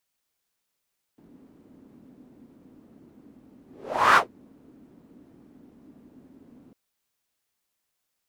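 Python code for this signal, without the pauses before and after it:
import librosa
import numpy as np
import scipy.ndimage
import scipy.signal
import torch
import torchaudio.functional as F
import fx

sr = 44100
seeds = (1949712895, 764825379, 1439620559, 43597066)

y = fx.whoosh(sr, seeds[0], length_s=5.55, peak_s=2.98, rise_s=0.52, fall_s=0.14, ends_hz=260.0, peak_hz=1300.0, q=3.9, swell_db=37.5)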